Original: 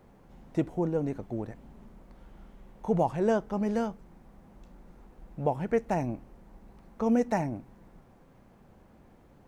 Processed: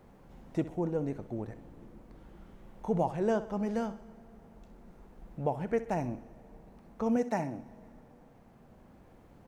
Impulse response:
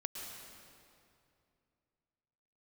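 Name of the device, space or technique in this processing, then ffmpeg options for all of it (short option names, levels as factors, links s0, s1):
ducked reverb: -filter_complex "[0:a]asettb=1/sr,asplit=3[s0][s1][s2];[s0]atrim=end=7.164[s3];[s1]atrim=start=7.16:end=7.59,asetpts=PTS-STARTPTS,afade=t=in:d=0.004:c=qsin,afade=t=out:st=0.426:d=0.004:c=qsin,highpass=130[s4];[s2]atrim=start=7.586[s5];[s3][s4]acrossfade=d=0.004:c1=hsin:c2=qsin[s6];[s6][s5]acrossfade=d=0.004:c1=qsin:c2=hsin,asplit=3[s7][s8][s9];[1:a]atrim=start_sample=2205[s10];[s8][s10]afir=irnorm=-1:irlink=0[s11];[s9]apad=whole_len=418067[s12];[s11][s12]sidechaincompress=threshold=0.00891:ratio=8:attack=16:release=1430,volume=0.841[s13];[s7][s13]amix=inputs=2:normalize=0,aecho=1:1:64|128|192|256:0.188|0.081|0.0348|0.015,volume=0.631"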